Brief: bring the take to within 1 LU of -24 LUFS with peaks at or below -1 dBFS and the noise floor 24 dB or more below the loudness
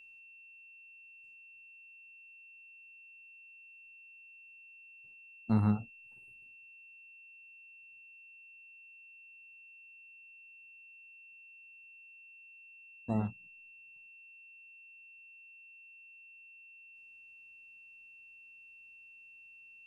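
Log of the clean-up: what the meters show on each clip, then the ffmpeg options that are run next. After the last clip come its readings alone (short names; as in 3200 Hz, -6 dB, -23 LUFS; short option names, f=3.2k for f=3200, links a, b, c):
steady tone 2700 Hz; tone level -53 dBFS; loudness -44.5 LUFS; peak -16.0 dBFS; loudness target -24.0 LUFS
-> -af "bandreject=f=2.7k:w=30"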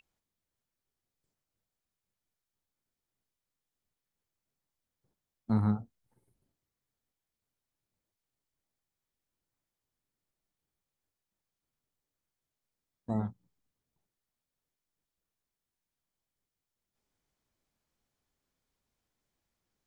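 steady tone none; loudness -33.0 LUFS; peak -16.0 dBFS; loudness target -24.0 LUFS
-> -af "volume=9dB"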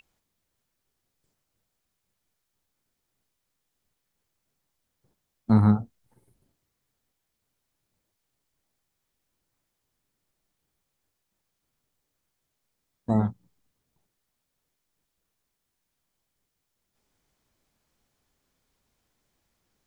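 loudness -24.0 LUFS; peak -7.0 dBFS; noise floor -81 dBFS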